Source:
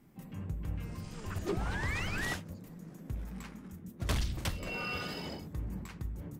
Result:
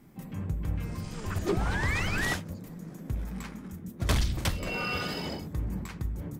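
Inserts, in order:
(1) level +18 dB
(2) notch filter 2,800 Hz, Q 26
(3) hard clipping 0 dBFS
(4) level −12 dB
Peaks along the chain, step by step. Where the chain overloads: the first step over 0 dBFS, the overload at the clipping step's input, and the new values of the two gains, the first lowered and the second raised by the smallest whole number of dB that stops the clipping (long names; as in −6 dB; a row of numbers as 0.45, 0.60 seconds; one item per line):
−3.5, −3.5, −3.5, −15.5 dBFS
no step passes full scale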